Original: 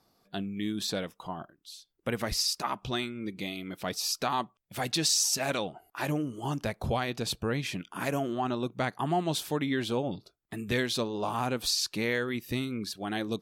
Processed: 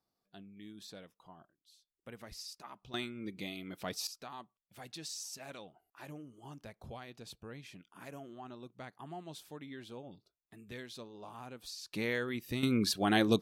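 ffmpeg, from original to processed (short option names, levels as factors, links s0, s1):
-af "asetnsamples=n=441:p=0,asendcmd='2.94 volume volume -6dB;4.07 volume volume -17.5dB;11.93 volume volume -5dB;12.63 volume volume 5dB',volume=0.126"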